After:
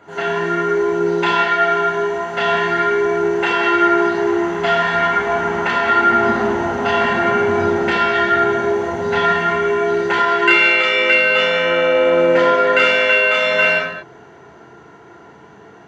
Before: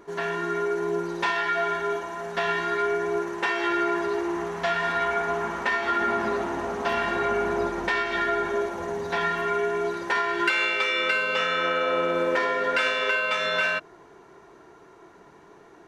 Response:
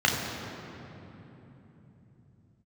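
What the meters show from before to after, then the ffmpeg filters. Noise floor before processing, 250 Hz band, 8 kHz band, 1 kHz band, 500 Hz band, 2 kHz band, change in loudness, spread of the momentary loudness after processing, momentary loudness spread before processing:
−52 dBFS, +10.5 dB, can't be measured, +9.5 dB, +10.5 dB, +9.5 dB, +10.0 dB, 7 LU, 6 LU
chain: -filter_complex "[1:a]atrim=start_sample=2205,afade=type=out:start_time=0.29:duration=0.01,atrim=end_sample=13230[link_01];[0:a][link_01]afir=irnorm=-1:irlink=0,volume=-6dB"

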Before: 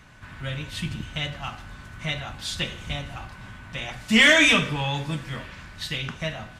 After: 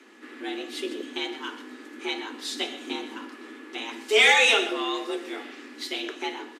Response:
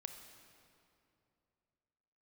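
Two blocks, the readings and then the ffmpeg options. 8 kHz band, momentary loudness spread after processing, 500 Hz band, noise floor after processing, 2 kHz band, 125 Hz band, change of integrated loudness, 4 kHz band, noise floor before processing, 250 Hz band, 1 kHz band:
−1.5 dB, 21 LU, +2.5 dB, −46 dBFS, −2.5 dB, below −35 dB, −1.5 dB, −1.0 dB, −45 dBFS, −5.5 dB, +2.5 dB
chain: -af "aecho=1:1:125:0.188,afreqshift=210,aresample=32000,aresample=44100,volume=-2dB"

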